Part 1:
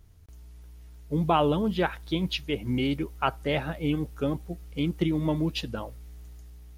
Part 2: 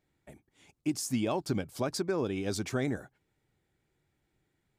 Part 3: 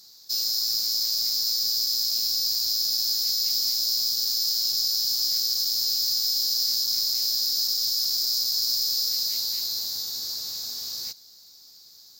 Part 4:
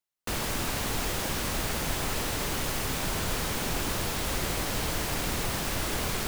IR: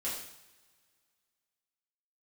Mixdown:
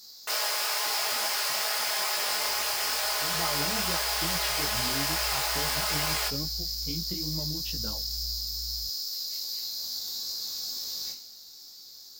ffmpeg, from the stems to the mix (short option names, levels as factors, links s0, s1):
-filter_complex "[0:a]asubboost=boost=2.5:cutoff=200,acompressor=threshold=0.0447:ratio=6,adelay=2100,volume=0.708,afade=t=in:st=3.2:d=0.25:silence=0.266073[s0];[1:a]acompressor=threshold=0.0126:ratio=6,volume=0.251[s1];[2:a]acompressor=threshold=0.02:ratio=6,volume=1.26,asplit=2[s2][s3];[s3]volume=0.631[s4];[3:a]highpass=f=590:w=0.5412,highpass=f=590:w=1.3066,aecho=1:1:4.8:0.89,volume=1.33,asplit=2[s5][s6];[s6]volume=0.168[s7];[4:a]atrim=start_sample=2205[s8];[s4][s7]amix=inputs=2:normalize=0[s9];[s9][s8]afir=irnorm=-1:irlink=0[s10];[s0][s1][s2][s5][s10]amix=inputs=5:normalize=0,flanger=delay=18:depth=3.8:speed=2.3,equalizer=f=110:t=o:w=0.26:g=-7.5"